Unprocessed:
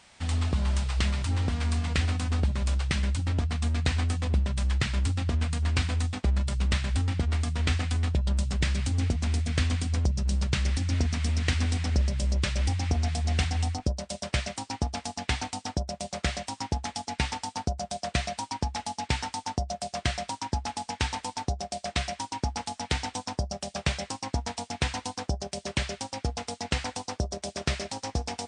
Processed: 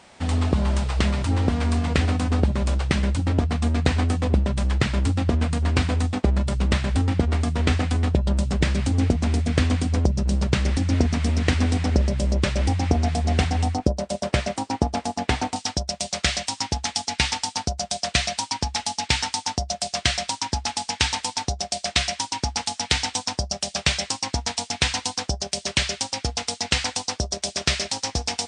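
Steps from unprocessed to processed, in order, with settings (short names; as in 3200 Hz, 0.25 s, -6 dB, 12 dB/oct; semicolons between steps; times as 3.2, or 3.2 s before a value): bell 400 Hz +10 dB 3 oct, from 15.56 s 5000 Hz; gain +2 dB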